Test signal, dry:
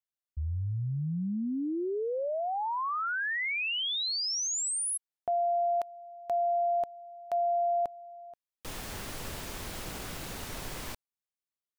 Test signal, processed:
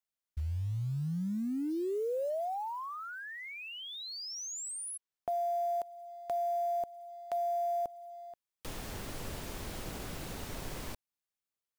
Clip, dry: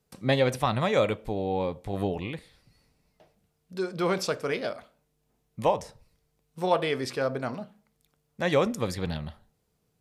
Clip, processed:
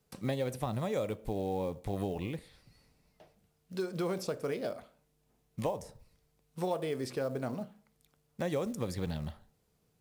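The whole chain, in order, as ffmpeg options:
ffmpeg -i in.wav -filter_complex "[0:a]acrossover=split=730|7100[link_01][link_02][link_03];[link_01]acompressor=threshold=-32dB:ratio=4[link_04];[link_02]acompressor=threshold=-47dB:ratio=4[link_05];[link_03]acompressor=threshold=-53dB:ratio=2[link_06];[link_04][link_05][link_06]amix=inputs=3:normalize=0,acrusher=bits=7:mode=log:mix=0:aa=0.000001" out.wav

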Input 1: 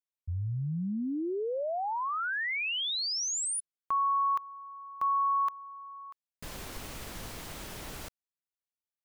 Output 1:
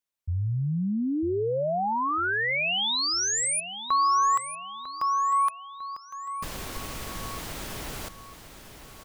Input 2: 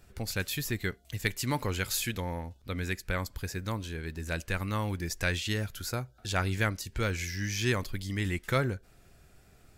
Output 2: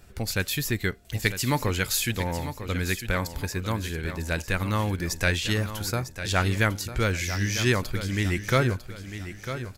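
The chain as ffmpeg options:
ffmpeg -i in.wav -af "aecho=1:1:950|1900|2850|3800:0.282|0.113|0.0451|0.018,volume=5.5dB" out.wav

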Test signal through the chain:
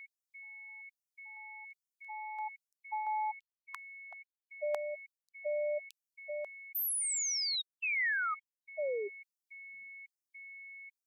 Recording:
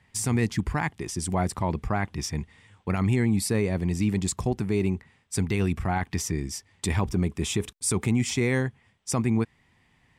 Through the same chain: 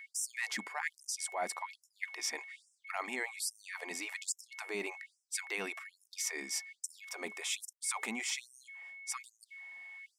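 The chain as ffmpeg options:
ffmpeg -i in.wav -af "lowshelf=frequency=470:width_type=q:width=1.5:gain=-11,areverse,acompressor=threshold=-34dB:ratio=10,areverse,aeval=exprs='val(0)+0.00316*sin(2*PI*2200*n/s)':channel_layout=same,equalizer=frequency=1900:width_type=o:width=0.46:gain=3,afftfilt=real='re*gte(b*sr/1024,200*pow(5300/200,0.5+0.5*sin(2*PI*1.2*pts/sr)))':imag='im*gte(b*sr/1024,200*pow(5300/200,0.5+0.5*sin(2*PI*1.2*pts/sr)))':win_size=1024:overlap=0.75,volume=1.5dB" out.wav

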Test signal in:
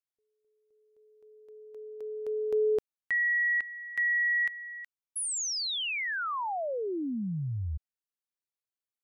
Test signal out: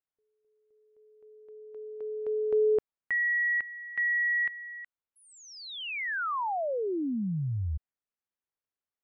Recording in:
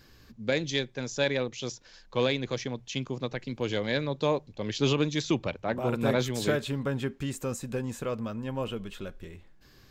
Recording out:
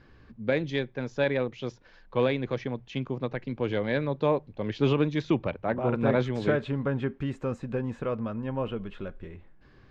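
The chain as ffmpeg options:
ffmpeg -i in.wav -af "lowpass=2100,volume=2dB" out.wav

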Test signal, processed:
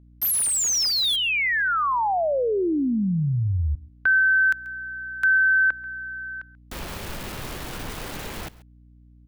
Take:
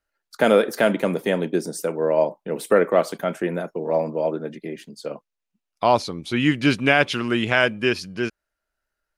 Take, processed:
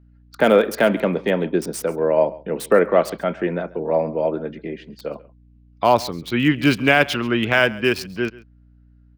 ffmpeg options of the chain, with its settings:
ffmpeg -i in.wav -filter_complex "[0:a]acrossover=split=390|1800|4400[link_01][link_02][link_03][link_04];[link_04]acrusher=bits=5:mix=0:aa=0.000001[link_05];[link_01][link_02][link_03][link_05]amix=inputs=4:normalize=0,aeval=exprs='val(0)+0.00251*(sin(2*PI*60*n/s)+sin(2*PI*2*60*n/s)/2+sin(2*PI*3*60*n/s)/3+sin(2*PI*4*60*n/s)/4+sin(2*PI*5*60*n/s)/5)':channel_layout=same,aecho=1:1:136:0.0944,volume=2dB" out.wav

